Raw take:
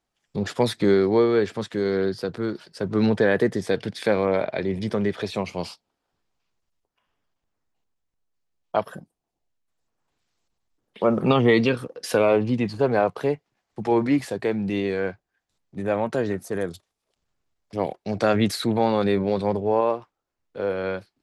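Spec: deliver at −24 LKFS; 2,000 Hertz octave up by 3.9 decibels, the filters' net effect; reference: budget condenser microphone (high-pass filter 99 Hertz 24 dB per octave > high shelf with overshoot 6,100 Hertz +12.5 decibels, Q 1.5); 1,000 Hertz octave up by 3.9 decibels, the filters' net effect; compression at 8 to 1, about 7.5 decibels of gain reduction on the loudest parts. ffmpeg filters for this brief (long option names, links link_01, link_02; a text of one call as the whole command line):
ffmpeg -i in.wav -af "equalizer=frequency=1000:width_type=o:gain=4.5,equalizer=frequency=2000:width_type=o:gain=4.5,acompressor=threshold=-20dB:ratio=8,highpass=frequency=99:width=0.5412,highpass=frequency=99:width=1.3066,highshelf=frequency=6100:width_type=q:width=1.5:gain=12.5,volume=3dB" out.wav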